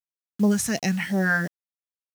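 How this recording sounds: phasing stages 2, 2.8 Hz, lowest notch 360–1600 Hz; a quantiser's noise floor 8-bit, dither none

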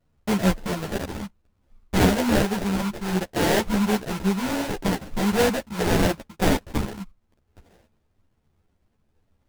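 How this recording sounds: aliases and images of a low sample rate 1200 Hz, jitter 20%; a shimmering, thickened sound

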